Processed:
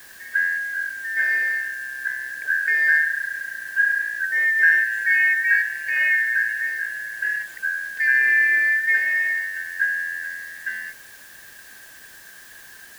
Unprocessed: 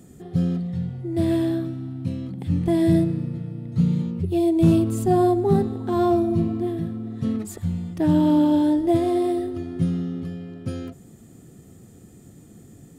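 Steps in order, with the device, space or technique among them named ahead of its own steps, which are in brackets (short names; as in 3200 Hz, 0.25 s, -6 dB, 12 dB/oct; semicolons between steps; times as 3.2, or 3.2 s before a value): split-band scrambled radio (four-band scrambler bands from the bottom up 3142; BPF 300–3200 Hz; white noise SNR 24 dB)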